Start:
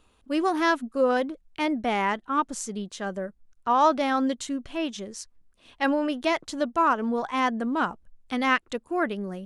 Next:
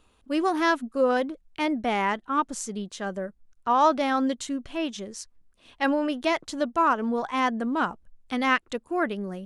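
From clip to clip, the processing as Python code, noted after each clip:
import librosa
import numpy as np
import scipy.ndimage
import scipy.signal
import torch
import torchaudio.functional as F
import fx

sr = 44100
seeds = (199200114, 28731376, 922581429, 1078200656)

y = x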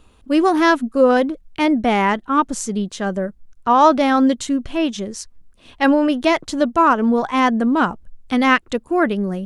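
y = fx.low_shelf(x, sr, hz=310.0, db=6.5)
y = y * 10.0 ** (7.0 / 20.0)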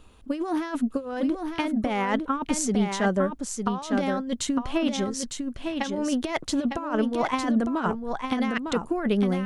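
y = fx.over_compress(x, sr, threshold_db=-19.0, ratio=-0.5)
y = y + 10.0 ** (-5.5 / 20.0) * np.pad(y, (int(905 * sr / 1000.0), 0))[:len(y)]
y = y * 10.0 ** (-5.5 / 20.0)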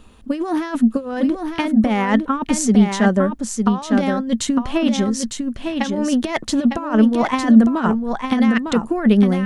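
y = fx.small_body(x, sr, hz=(220.0, 1800.0), ring_ms=90, db=9)
y = y * 10.0 ** (5.5 / 20.0)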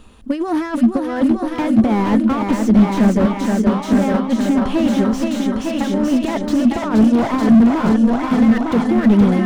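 y = fx.echo_feedback(x, sr, ms=473, feedback_pct=59, wet_db=-6.0)
y = fx.slew_limit(y, sr, full_power_hz=84.0)
y = y * 10.0 ** (2.0 / 20.0)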